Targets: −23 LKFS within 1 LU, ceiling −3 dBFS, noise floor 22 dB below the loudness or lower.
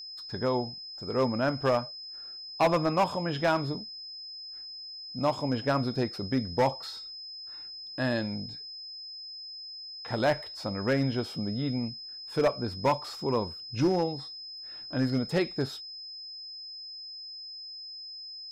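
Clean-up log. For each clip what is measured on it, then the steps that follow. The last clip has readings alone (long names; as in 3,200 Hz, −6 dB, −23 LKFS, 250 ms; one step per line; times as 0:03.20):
share of clipped samples 0.6%; peaks flattened at −18.5 dBFS; interfering tone 5,100 Hz; level of the tone −40 dBFS; integrated loudness −31.5 LKFS; sample peak −18.5 dBFS; target loudness −23.0 LKFS
→ clipped peaks rebuilt −18.5 dBFS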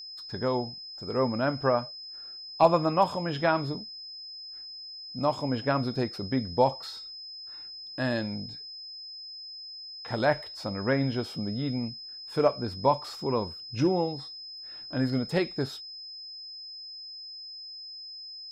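share of clipped samples 0.0%; interfering tone 5,100 Hz; level of the tone −40 dBFS
→ notch filter 5,100 Hz, Q 30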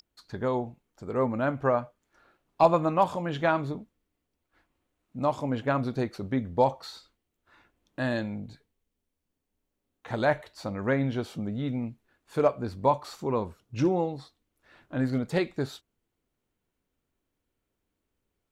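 interfering tone none found; integrated loudness −29.0 LKFS; sample peak −9.5 dBFS; target loudness −23.0 LKFS
→ level +6 dB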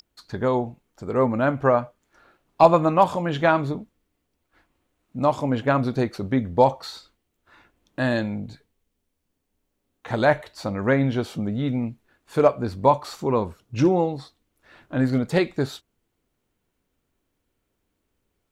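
integrated loudness −22.5 LKFS; sample peak −3.5 dBFS; background noise floor −76 dBFS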